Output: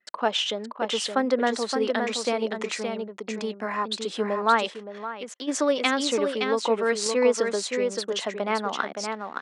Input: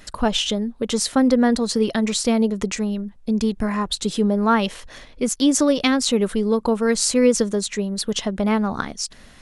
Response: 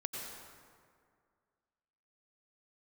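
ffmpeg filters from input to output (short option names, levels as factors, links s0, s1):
-filter_complex "[0:a]highpass=f=180:w=0.5412,highpass=f=180:w=1.3066,aecho=1:1:569:0.531,asplit=3[s0][s1][s2];[s0]afade=t=out:st=4.69:d=0.02[s3];[s1]acompressor=threshold=0.0501:ratio=10,afade=t=in:st=4.69:d=0.02,afade=t=out:st=5.47:d=0.02[s4];[s2]afade=t=in:st=5.47:d=0.02[s5];[s3][s4][s5]amix=inputs=3:normalize=0,lowpass=f=9200:w=0.5412,lowpass=f=9200:w=1.3066,lowshelf=f=360:g=-6.5,asettb=1/sr,asplit=3[s6][s7][s8];[s6]atrim=end=7.064[s9];[s7]atrim=start=7.06:end=7.56,asetpts=PTS-STARTPTS,afade=t=in:d=0.004:c=qsin,afade=t=out:st=0.496:d=0.004:c=qsin,acompressor=mode=upward:threshold=0.126:ratio=2.5[s10];[s8]atrim=start=7.556[s11];[s9][s10]acrossfade=d=0.004:c1=hsin:c2=qsin[s12];[s12][s11]acrossfade=d=0.004:c1=qsin:c2=hsin,anlmdn=0.251,bass=f=250:g=-14,treble=f=4000:g=-10"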